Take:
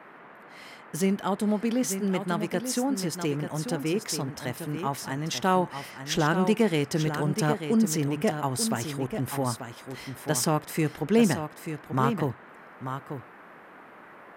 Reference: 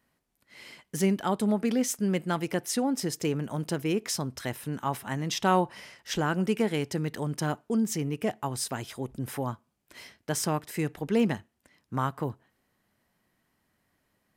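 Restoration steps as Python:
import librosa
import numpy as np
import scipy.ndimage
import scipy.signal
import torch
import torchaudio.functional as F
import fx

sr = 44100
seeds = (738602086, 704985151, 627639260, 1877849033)

y = fx.noise_reduce(x, sr, print_start_s=13.25, print_end_s=13.75, reduce_db=26.0)
y = fx.fix_echo_inverse(y, sr, delay_ms=888, level_db=-8.5)
y = fx.gain(y, sr, db=fx.steps((0.0, 0.0), (5.64, -3.5)))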